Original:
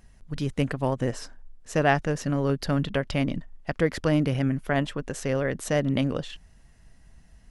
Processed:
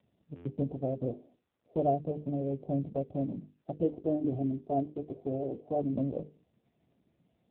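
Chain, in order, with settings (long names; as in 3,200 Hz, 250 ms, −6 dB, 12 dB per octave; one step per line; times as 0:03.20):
Chebyshev low-pass filter 750 Hz, order 10
low-shelf EQ 140 Hz −8.5 dB
mains-hum notches 50/100/150/200/250/300/350/400/450/500 Hz
0:03.84–0:05.93: comb filter 2.8 ms, depth 53%
buffer that repeats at 0:00.35, samples 512, times 8
level −2 dB
AMR narrowband 5.9 kbit/s 8,000 Hz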